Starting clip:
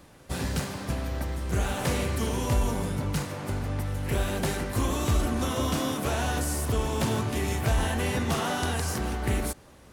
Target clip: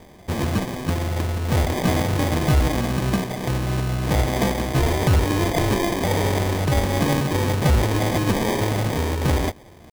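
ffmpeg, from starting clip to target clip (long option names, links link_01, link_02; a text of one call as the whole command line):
ffmpeg -i in.wav -af "asetrate=57191,aresample=44100,atempo=0.771105,acrusher=samples=32:mix=1:aa=0.000001,volume=7dB" out.wav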